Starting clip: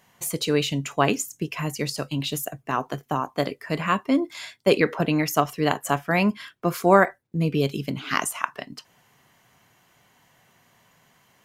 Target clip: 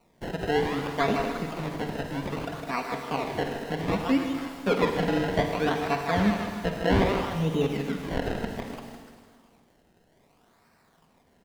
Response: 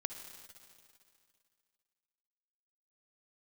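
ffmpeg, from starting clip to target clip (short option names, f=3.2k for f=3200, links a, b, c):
-filter_complex "[0:a]aecho=1:1:4.3:0.65,aecho=1:1:157|294:0.422|0.178,asplit=2[a][b];[b]aeval=exprs='0.251*(abs(mod(val(0)/0.251+3,4)-2)-1)':c=same,volume=-7.5dB[c];[a][c]amix=inputs=2:normalize=0,acrusher=samples=26:mix=1:aa=0.000001:lfo=1:lforange=26:lforate=0.63[d];[1:a]atrim=start_sample=2205,asetrate=57330,aresample=44100[e];[d][e]afir=irnorm=-1:irlink=0,acrossover=split=4100[f][g];[g]acompressor=threshold=-46dB:ratio=4:attack=1:release=60[h];[f][h]amix=inputs=2:normalize=0,volume=-4.5dB"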